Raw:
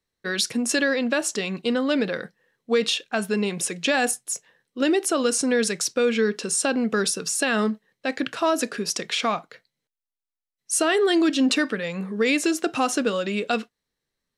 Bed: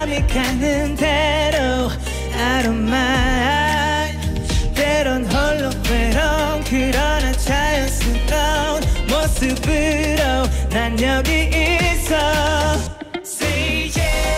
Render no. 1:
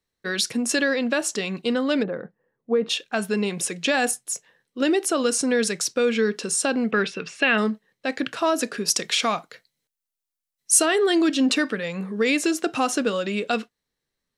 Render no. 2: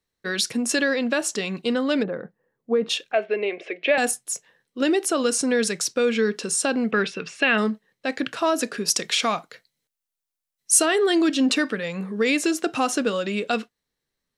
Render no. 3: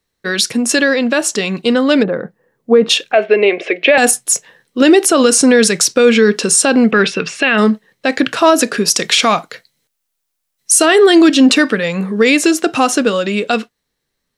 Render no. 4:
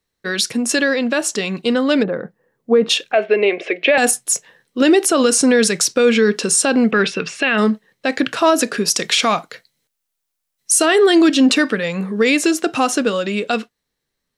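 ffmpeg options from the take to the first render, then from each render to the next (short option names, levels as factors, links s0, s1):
-filter_complex "[0:a]asplit=3[s0][s1][s2];[s0]afade=t=out:st=2.02:d=0.02[s3];[s1]lowpass=1000,afade=t=in:st=2.02:d=0.02,afade=t=out:st=2.89:d=0.02[s4];[s2]afade=t=in:st=2.89:d=0.02[s5];[s3][s4][s5]amix=inputs=3:normalize=0,asettb=1/sr,asplit=3[s6][s7][s8];[s6]atrim=end=6.914[s9];[s7]atrim=start=6.91:end=7.58,asetpts=PTS-STARTPTS,afade=t=in:d=0.004:c=qsin,afade=t=out:st=0.666:d=0.004:c=qsin,lowpass=f=2500:t=q:w=2.8[s10];[s8]atrim=start=7.576[s11];[s9][s10]acrossfade=d=0.004:c1=hsin:c2=qsin[s12];[s12][s11]acrossfade=d=0.004:c1=qsin:c2=hsin,asettb=1/sr,asplit=3[s13][s14][s15];[s13]atrim=end=8.884[s16];[s14]atrim=start=8.88:end=10.86,asetpts=PTS-STARTPTS,afade=t=in:d=0.004:c=qsin,afade=t=out:st=1.976:d=0.004:c=qsin,highshelf=f=4400:g=8.5[s17];[s15]atrim=start=10.856[s18];[s16][s17]acrossfade=d=0.004:c1=hsin:c2=qsin[s19];[s19][s18]acrossfade=d=0.004:c1=qsin:c2=hsin"
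-filter_complex "[0:a]asettb=1/sr,asplit=3[s0][s1][s2];[s0]atrim=end=3.124[s3];[s1]atrim=start=3.12:end=3.98,asetpts=PTS-STARTPTS,afade=t=in:d=0.004:c=qsin,afade=t=out:st=0.856:d=0.004:c=qsin,highpass=f=340:w=0.5412,highpass=f=340:w=1.3066,equalizer=f=370:t=q:w=4:g=5,equalizer=f=640:t=q:w=4:g=9,equalizer=f=950:t=q:w=4:g=-10,equalizer=f=1400:t=q:w=4:g=-6,equalizer=f=2200:t=q:w=4:g=8,lowpass=f=2900:w=0.5412,lowpass=f=2900:w=1.3066[s4];[s2]atrim=start=3.976[s5];[s3][s4]acrossfade=d=0.004:c1=hsin:c2=qsin[s6];[s6][s5]acrossfade=d=0.004:c1=qsin:c2=hsin"
-af "dynaudnorm=f=390:g=13:m=2.51,alimiter=level_in=2.82:limit=0.891:release=50:level=0:latency=1"
-af "volume=0.631"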